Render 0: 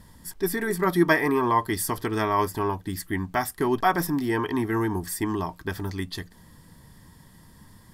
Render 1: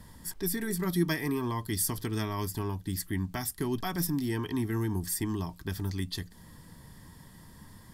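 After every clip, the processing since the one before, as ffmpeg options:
-filter_complex "[0:a]acrossover=split=250|3000[a][b][c];[b]acompressor=threshold=-49dB:ratio=2[d];[a][d][c]amix=inputs=3:normalize=0"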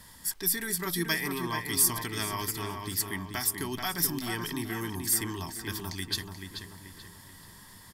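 -filter_complex "[0:a]tiltshelf=f=830:g=-7,asplit=2[a][b];[b]adelay=433,lowpass=f=2.9k:p=1,volume=-5dB,asplit=2[c][d];[d]adelay=433,lowpass=f=2.9k:p=1,volume=0.48,asplit=2[e][f];[f]adelay=433,lowpass=f=2.9k:p=1,volume=0.48,asplit=2[g][h];[h]adelay=433,lowpass=f=2.9k:p=1,volume=0.48,asplit=2[i][j];[j]adelay=433,lowpass=f=2.9k:p=1,volume=0.48,asplit=2[k][l];[l]adelay=433,lowpass=f=2.9k:p=1,volume=0.48[m];[a][c][e][g][i][k][m]amix=inputs=7:normalize=0"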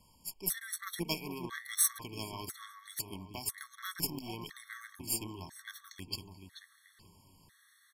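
-af "aeval=exprs='0.316*(cos(1*acos(clip(val(0)/0.316,-1,1)))-cos(1*PI/2))+0.0158*(cos(4*acos(clip(val(0)/0.316,-1,1)))-cos(4*PI/2))+0.02*(cos(5*acos(clip(val(0)/0.316,-1,1)))-cos(5*PI/2))+0.00794*(cos(6*acos(clip(val(0)/0.316,-1,1)))-cos(6*PI/2))+0.0447*(cos(7*acos(clip(val(0)/0.316,-1,1)))-cos(7*PI/2))':c=same,highshelf=f=9.2k:g=-4.5,afftfilt=real='re*gt(sin(2*PI*1*pts/sr)*(1-2*mod(floor(b*sr/1024/1100),2)),0)':imag='im*gt(sin(2*PI*1*pts/sr)*(1-2*mod(floor(b*sr/1024/1100),2)),0)':win_size=1024:overlap=0.75"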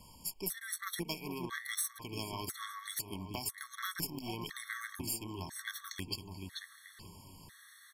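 -af "acompressor=threshold=-45dB:ratio=4,volume=8dB"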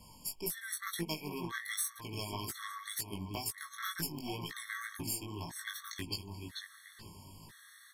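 -af "flanger=delay=18:depth=2.4:speed=2,volume=3.5dB"

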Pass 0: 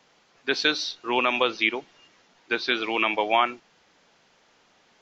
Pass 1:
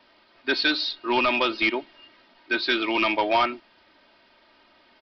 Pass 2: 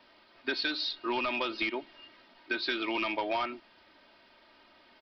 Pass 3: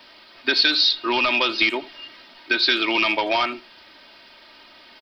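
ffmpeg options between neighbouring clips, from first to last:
-af "aecho=1:1:3.2:0.69,aresample=11025,asoftclip=type=tanh:threshold=-17dB,aresample=44100,volume=2dB"
-af "acompressor=threshold=-27dB:ratio=6,volume=-2dB"
-filter_complex "[0:a]highshelf=f=2.6k:g=11,asplit=2[a][b];[b]adelay=80,highpass=300,lowpass=3.4k,asoftclip=type=hard:threshold=-22dB,volume=-18dB[c];[a][c]amix=inputs=2:normalize=0,volume=8dB"

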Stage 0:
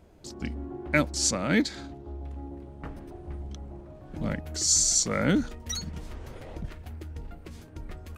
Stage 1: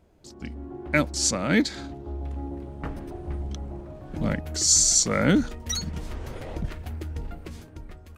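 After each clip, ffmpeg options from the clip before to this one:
-af "dynaudnorm=f=100:g=13:m=10.5dB,volume=-4.5dB"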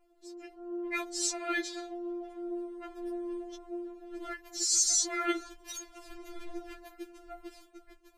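-af "afftfilt=real='re*4*eq(mod(b,16),0)':imag='im*4*eq(mod(b,16),0)':win_size=2048:overlap=0.75,volume=-4dB"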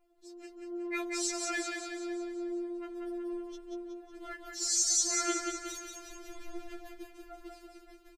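-af "aecho=1:1:184|368|552|736|920|1104|1288:0.631|0.328|0.171|0.0887|0.0461|0.024|0.0125,volume=-3dB"

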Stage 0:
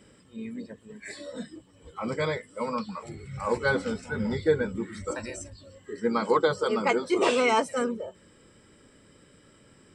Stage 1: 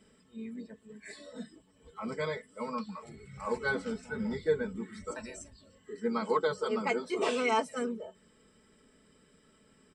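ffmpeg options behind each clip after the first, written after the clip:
-af "aecho=1:1:4.6:0.56,volume=-8dB"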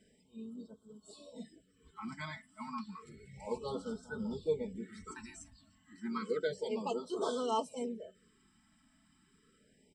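-af "afftfilt=real='re*(1-between(b*sr/1024,430*pow(2200/430,0.5+0.5*sin(2*PI*0.31*pts/sr))/1.41,430*pow(2200/430,0.5+0.5*sin(2*PI*0.31*pts/sr))*1.41))':imag='im*(1-between(b*sr/1024,430*pow(2200/430,0.5+0.5*sin(2*PI*0.31*pts/sr))/1.41,430*pow(2200/430,0.5+0.5*sin(2*PI*0.31*pts/sr))*1.41))':win_size=1024:overlap=0.75,volume=-4.5dB"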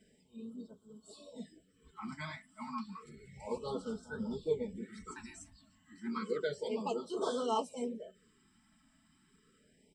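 -af "flanger=delay=4.5:depth=8.7:regen=-46:speed=1.6:shape=sinusoidal,volume=4dB"

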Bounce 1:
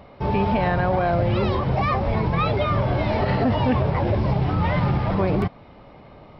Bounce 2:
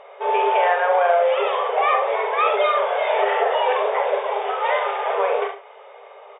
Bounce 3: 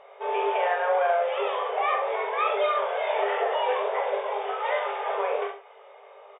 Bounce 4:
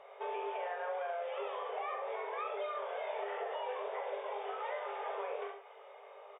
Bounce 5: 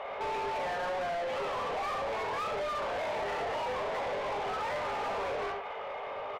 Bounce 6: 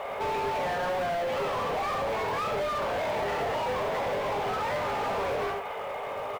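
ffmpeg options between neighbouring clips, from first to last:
-filter_complex "[0:a]asplit=2[a][b];[b]aecho=0:1:42|67:0.501|0.355[c];[a][c]amix=inputs=2:normalize=0,afftfilt=real='re*between(b*sr/4096,390,3700)':imag='im*between(b*sr/4096,390,3700)':win_size=4096:overlap=0.75,asplit=2[d][e];[e]aecho=0:1:73:0.282[f];[d][f]amix=inputs=2:normalize=0,volume=4dB"
-filter_complex "[0:a]asplit=2[a][b];[b]adelay=20,volume=-7dB[c];[a][c]amix=inputs=2:normalize=0,volume=-7dB"
-filter_complex "[0:a]acrossover=split=340|2100[a][b][c];[a]acompressor=threshold=-46dB:ratio=4[d];[b]acompressor=threshold=-35dB:ratio=4[e];[c]acompressor=threshold=-52dB:ratio=4[f];[d][e][f]amix=inputs=3:normalize=0,volume=-4.5dB"
-filter_complex "[0:a]asplit=2[a][b];[b]highpass=f=720:p=1,volume=27dB,asoftclip=type=tanh:threshold=-27.5dB[c];[a][c]amix=inputs=2:normalize=0,lowpass=f=2.5k:p=1,volume=-6dB"
-filter_complex "[0:a]equalizer=f=130:w=0.55:g=6.5,asplit=2[a][b];[b]acrusher=bits=3:mode=log:mix=0:aa=0.000001,volume=-6.5dB[c];[a][c]amix=inputs=2:normalize=0"

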